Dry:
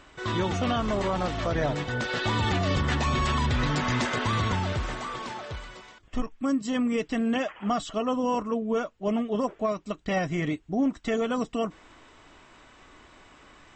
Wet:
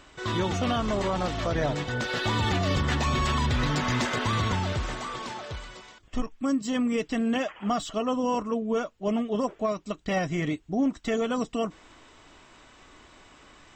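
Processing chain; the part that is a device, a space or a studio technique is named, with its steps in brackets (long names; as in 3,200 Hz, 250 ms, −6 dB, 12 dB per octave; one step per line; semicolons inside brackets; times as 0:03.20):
exciter from parts (in parallel at −6 dB: high-pass filter 2,600 Hz 12 dB per octave + soft clipping −39.5 dBFS, distortion −9 dB)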